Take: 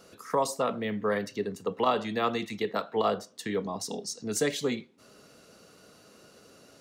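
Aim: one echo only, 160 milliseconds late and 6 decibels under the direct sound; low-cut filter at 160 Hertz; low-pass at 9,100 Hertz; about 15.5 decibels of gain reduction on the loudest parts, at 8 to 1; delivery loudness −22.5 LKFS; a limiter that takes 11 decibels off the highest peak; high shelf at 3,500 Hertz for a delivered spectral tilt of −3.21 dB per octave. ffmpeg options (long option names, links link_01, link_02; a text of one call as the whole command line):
ffmpeg -i in.wav -af "highpass=160,lowpass=9100,highshelf=frequency=3500:gain=4.5,acompressor=threshold=-38dB:ratio=8,alimiter=level_in=11dB:limit=-24dB:level=0:latency=1,volume=-11dB,aecho=1:1:160:0.501,volume=22.5dB" out.wav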